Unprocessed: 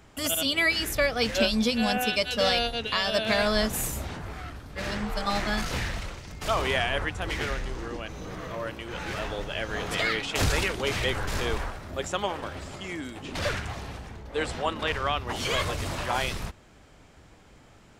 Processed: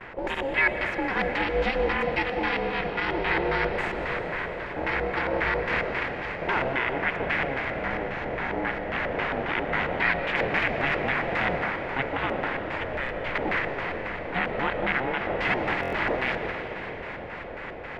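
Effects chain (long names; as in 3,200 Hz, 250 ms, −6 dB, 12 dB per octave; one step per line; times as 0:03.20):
compressor on every frequency bin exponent 0.6
noise gate with hold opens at −29 dBFS
high-pass filter 170 Hz 12 dB per octave
brickwall limiter −13 dBFS, peak gain reduction 7.5 dB
reversed playback
upward compression, threshold −30 dBFS
reversed playback
ring modulation 270 Hz
auto-filter low-pass square 3.7 Hz 590–2,000 Hz
on a send at −6.5 dB: convolution reverb RT60 5.3 s, pre-delay 80 ms
on the sum: buffer that repeats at 0:15.81, samples 1,024, times 4
one half of a high-frequency compander decoder only
level −1 dB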